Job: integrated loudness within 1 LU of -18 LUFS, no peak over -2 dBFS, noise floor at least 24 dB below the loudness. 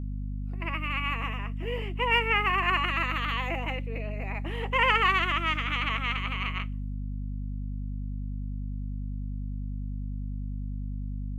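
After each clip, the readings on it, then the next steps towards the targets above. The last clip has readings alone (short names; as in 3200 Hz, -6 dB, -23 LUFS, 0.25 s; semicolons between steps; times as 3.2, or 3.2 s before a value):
hum 50 Hz; harmonics up to 250 Hz; hum level -31 dBFS; loudness -29.5 LUFS; peak -9.0 dBFS; loudness target -18.0 LUFS
-> notches 50/100/150/200/250 Hz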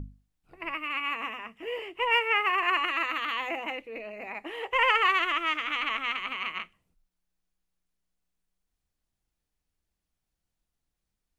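hum none; loudness -27.5 LUFS; peak -10.0 dBFS; loudness target -18.0 LUFS
-> gain +9.5 dB; limiter -2 dBFS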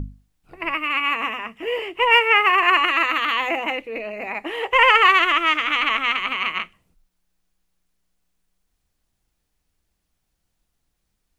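loudness -18.0 LUFS; peak -2.0 dBFS; noise floor -75 dBFS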